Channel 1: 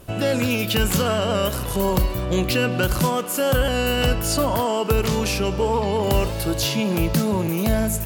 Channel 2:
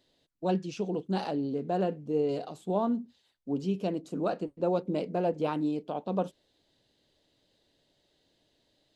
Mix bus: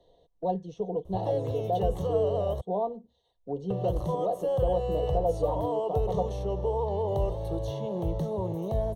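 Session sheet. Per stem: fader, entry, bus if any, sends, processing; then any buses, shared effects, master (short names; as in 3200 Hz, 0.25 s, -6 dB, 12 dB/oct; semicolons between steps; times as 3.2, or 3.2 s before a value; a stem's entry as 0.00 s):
-5.5 dB, 1.05 s, muted 2.61–3.7, no send, dry
+2.5 dB, 0.00 s, no send, comb 4.2 ms, depth 48%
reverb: off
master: running mean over 18 samples; fixed phaser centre 600 Hz, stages 4; three-band squash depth 40%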